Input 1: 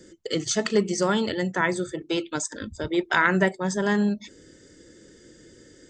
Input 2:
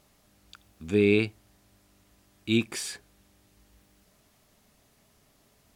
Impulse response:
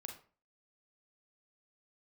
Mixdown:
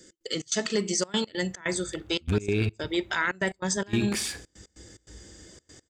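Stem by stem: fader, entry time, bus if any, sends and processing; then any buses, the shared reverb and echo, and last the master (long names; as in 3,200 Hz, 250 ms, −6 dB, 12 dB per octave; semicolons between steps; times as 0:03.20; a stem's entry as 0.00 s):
−7.5 dB, 0.00 s, send −13 dB, no echo send, high-shelf EQ 2,100 Hz +10.5 dB
−0.5 dB, 1.40 s, send −3.5 dB, echo send −17.5 dB, adaptive Wiener filter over 9 samples; parametric band 75 Hz +14 dB 1.2 octaves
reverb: on, RT60 0.40 s, pre-delay 34 ms
echo: repeating echo 66 ms, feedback 42%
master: gate pattern "x.xx.xxxxx." 145 BPM −24 dB; automatic gain control gain up to 3 dB; brickwall limiter −15.5 dBFS, peak gain reduction 11.5 dB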